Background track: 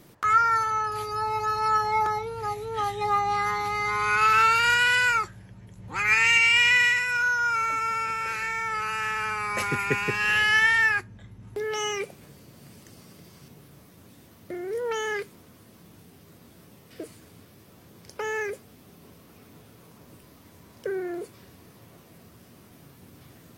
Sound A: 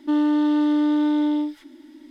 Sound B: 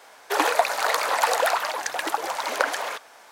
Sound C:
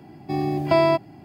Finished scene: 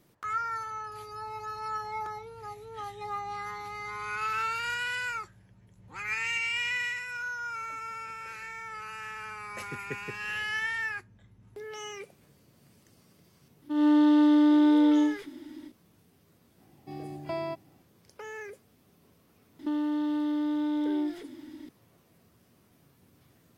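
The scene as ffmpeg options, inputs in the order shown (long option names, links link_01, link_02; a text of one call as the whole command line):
ffmpeg -i bed.wav -i cue0.wav -i cue1.wav -i cue2.wav -filter_complex "[1:a]asplit=2[link_01][link_02];[0:a]volume=-11.5dB[link_03];[link_01]dynaudnorm=framelen=120:gausssize=3:maxgain=13dB[link_04];[link_02]acompressor=threshold=-27dB:ratio=6:attack=3.2:release=140:knee=1:detection=peak[link_05];[link_04]atrim=end=2.1,asetpts=PTS-STARTPTS,volume=-12dB,afade=type=in:duration=0.004:curve=hsin,afade=type=out:start_time=2.096:duration=0.004:curve=hsin,adelay=13620[link_06];[3:a]atrim=end=1.24,asetpts=PTS-STARTPTS,volume=-16dB,afade=type=in:duration=0.004:curve=hsin,afade=type=out:start_time=1.236:duration=0.004:curve=hsin,adelay=16580[link_07];[link_05]atrim=end=2.1,asetpts=PTS-STARTPTS,afade=type=in:duration=0.004:curve=hsin,afade=type=out:start_time=2.096:duration=0.004:curve=hsin,adelay=19590[link_08];[link_03][link_06][link_07][link_08]amix=inputs=4:normalize=0" out.wav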